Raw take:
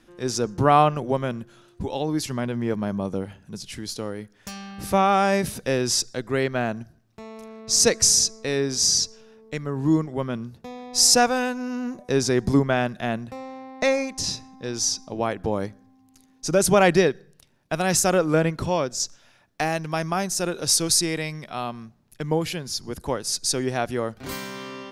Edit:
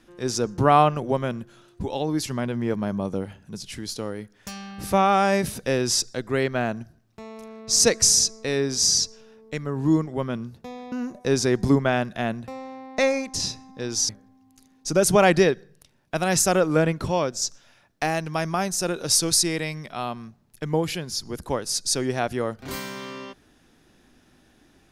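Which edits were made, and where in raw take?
10.92–11.76 cut
14.93–15.67 cut

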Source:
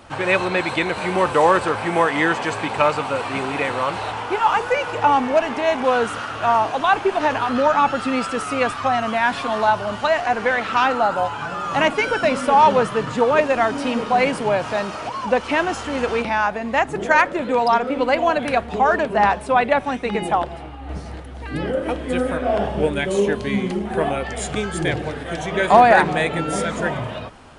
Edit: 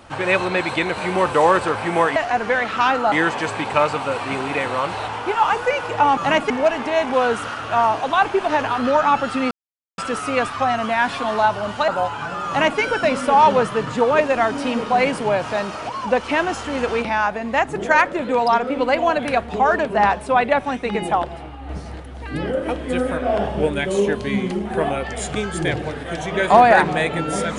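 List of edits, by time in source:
8.22 insert silence 0.47 s
10.12–11.08 move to 2.16
11.67–12 copy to 5.21

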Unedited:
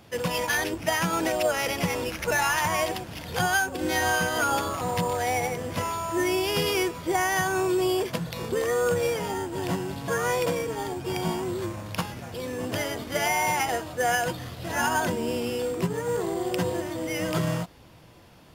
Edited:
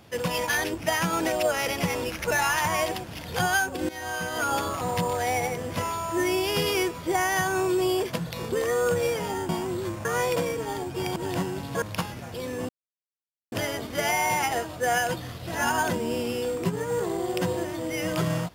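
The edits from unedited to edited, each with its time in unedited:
3.89–4.64 fade in, from -16 dB
9.49–10.15 swap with 11.26–11.82
12.69 insert silence 0.83 s

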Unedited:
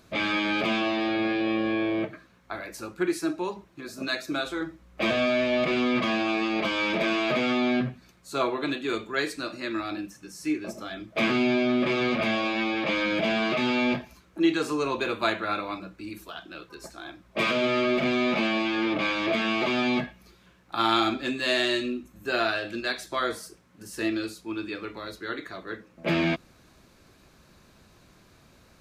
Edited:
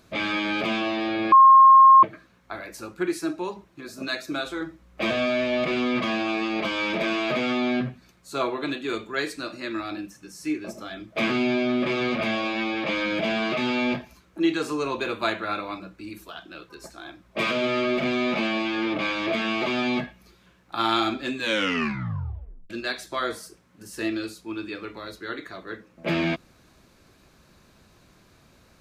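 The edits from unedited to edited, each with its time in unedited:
1.32–2.03 bleep 1070 Hz -8.5 dBFS
21.35 tape stop 1.35 s

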